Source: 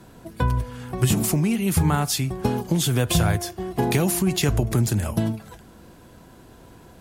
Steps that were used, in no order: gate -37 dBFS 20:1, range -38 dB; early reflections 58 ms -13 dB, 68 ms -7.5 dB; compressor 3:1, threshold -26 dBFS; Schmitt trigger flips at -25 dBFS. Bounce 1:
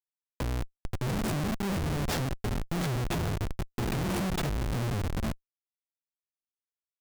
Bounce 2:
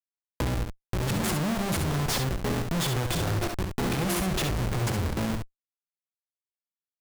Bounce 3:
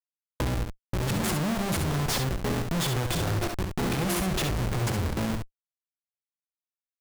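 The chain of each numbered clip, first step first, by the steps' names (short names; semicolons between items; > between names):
gate > early reflections > compressor > Schmitt trigger; gate > Schmitt trigger > early reflections > compressor; Schmitt trigger > early reflections > gate > compressor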